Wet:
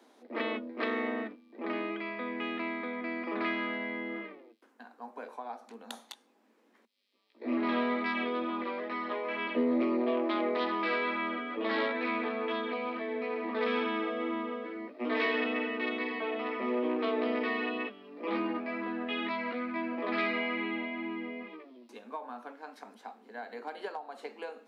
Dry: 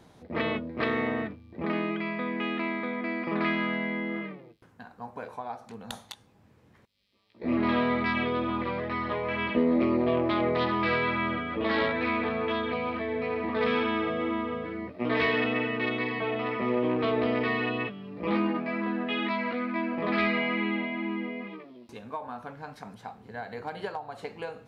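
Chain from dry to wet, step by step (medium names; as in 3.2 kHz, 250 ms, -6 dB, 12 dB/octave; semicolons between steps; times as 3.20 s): steep high-pass 220 Hz 96 dB/octave; trim -4 dB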